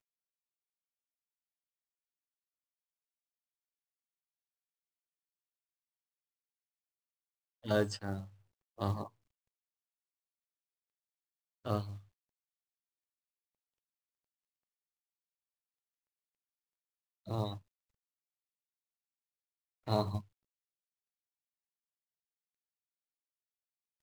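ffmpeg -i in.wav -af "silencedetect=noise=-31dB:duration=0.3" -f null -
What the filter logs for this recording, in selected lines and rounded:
silence_start: 0.00
silence_end: 7.67 | silence_duration: 7.67
silence_start: 8.16
silence_end: 8.81 | silence_duration: 0.65
silence_start: 9.03
silence_end: 11.67 | silence_duration: 2.64
silence_start: 11.81
silence_end: 17.31 | silence_duration: 5.50
silence_start: 17.53
silence_end: 19.88 | silence_duration: 2.35
silence_start: 20.18
silence_end: 24.02 | silence_duration: 3.84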